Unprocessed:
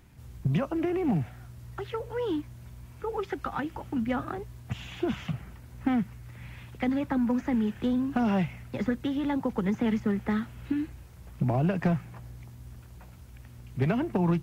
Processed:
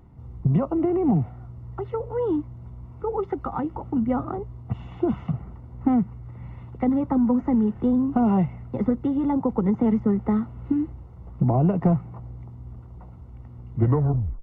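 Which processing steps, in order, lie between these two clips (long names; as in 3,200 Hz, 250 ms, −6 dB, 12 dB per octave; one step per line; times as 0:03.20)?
turntable brake at the end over 0.69 s
Savitzky-Golay smoothing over 65 samples
notch filter 590 Hz, Q 12
level +6 dB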